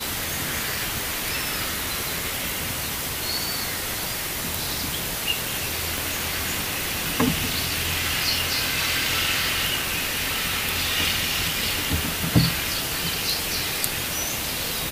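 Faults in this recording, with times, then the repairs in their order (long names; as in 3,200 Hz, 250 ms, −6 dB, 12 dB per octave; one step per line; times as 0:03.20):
0:05.98: click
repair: click removal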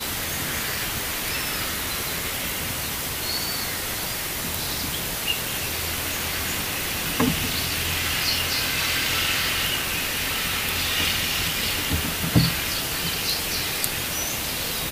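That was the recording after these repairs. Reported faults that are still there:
none of them is left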